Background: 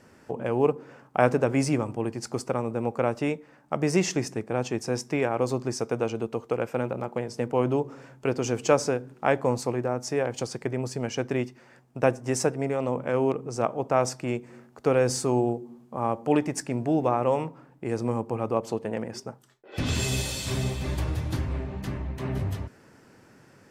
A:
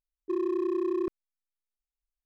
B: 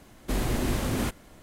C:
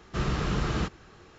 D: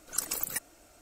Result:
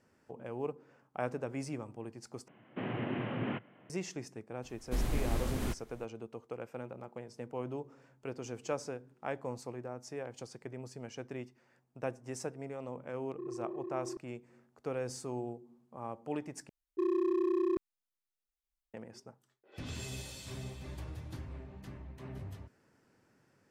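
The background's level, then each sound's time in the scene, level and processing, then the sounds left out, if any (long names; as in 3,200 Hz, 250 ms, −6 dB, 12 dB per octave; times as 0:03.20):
background −15 dB
0:02.48: overwrite with B −6 dB + Chebyshev band-pass filter 110–3,000 Hz, order 5
0:04.63: mix in B −9.5 dB + low-shelf EQ 63 Hz +10 dB
0:13.09: mix in A −13 dB + low-pass filter 1,700 Hz
0:16.69: overwrite with A −2 dB
not used: C, D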